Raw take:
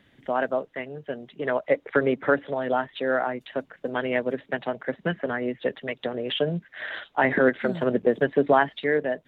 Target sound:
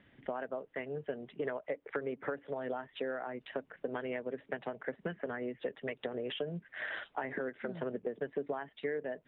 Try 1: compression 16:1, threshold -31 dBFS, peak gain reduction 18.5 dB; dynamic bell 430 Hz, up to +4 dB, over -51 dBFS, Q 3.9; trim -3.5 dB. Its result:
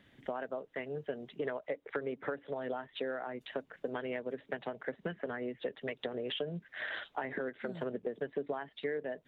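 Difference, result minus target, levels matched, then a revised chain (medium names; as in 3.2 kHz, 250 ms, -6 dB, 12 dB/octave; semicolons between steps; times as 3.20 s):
4 kHz band +3.5 dB
compression 16:1, threshold -31 dBFS, peak gain reduction 18.5 dB; dynamic bell 430 Hz, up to +4 dB, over -51 dBFS, Q 3.9; low-pass 3.1 kHz 24 dB/octave; trim -3.5 dB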